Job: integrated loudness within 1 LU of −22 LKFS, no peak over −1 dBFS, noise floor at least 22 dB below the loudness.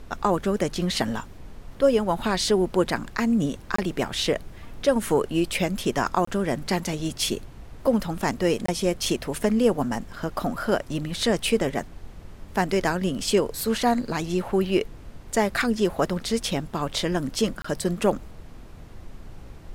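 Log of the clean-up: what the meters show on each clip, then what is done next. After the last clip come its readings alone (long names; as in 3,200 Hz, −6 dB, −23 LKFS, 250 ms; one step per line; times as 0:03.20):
number of dropouts 4; longest dropout 24 ms; background noise floor −44 dBFS; target noise floor −47 dBFS; integrated loudness −25.0 LKFS; sample peak −8.5 dBFS; target loudness −22.0 LKFS
→ repair the gap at 0:03.76/0:06.25/0:08.66/0:17.62, 24 ms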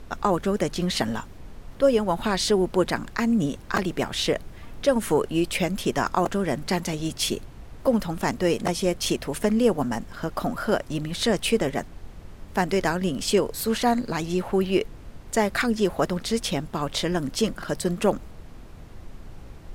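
number of dropouts 0; background noise floor −43 dBFS; target noise floor −47 dBFS
→ noise reduction from a noise print 6 dB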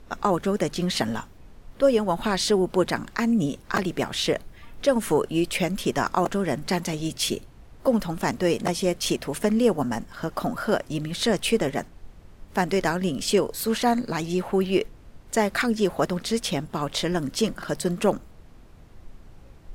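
background noise floor −49 dBFS; integrated loudness −25.0 LKFS; sample peak −7.5 dBFS; target loudness −22.0 LKFS
→ level +3 dB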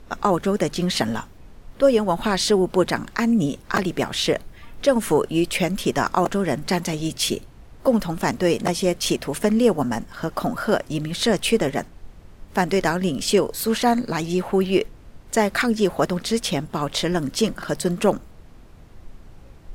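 integrated loudness −22.0 LKFS; sample peak −4.5 dBFS; background noise floor −46 dBFS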